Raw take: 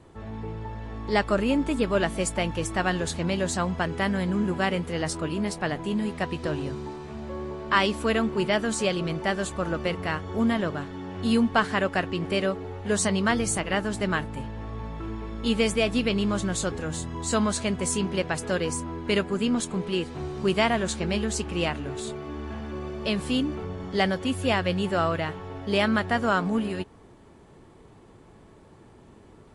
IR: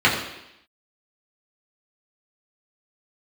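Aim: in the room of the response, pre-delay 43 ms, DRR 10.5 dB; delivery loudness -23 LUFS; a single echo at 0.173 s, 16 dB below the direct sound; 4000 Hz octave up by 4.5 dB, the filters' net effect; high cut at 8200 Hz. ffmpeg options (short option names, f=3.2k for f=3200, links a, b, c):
-filter_complex "[0:a]lowpass=8.2k,equalizer=f=4k:t=o:g=6.5,aecho=1:1:173:0.158,asplit=2[a][b];[1:a]atrim=start_sample=2205,adelay=43[c];[b][c]afir=irnorm=-1:irlink=0,volume=-32.5dB[d];[a][d]amix=inputs=2:normalize=0,volume=2.5dB"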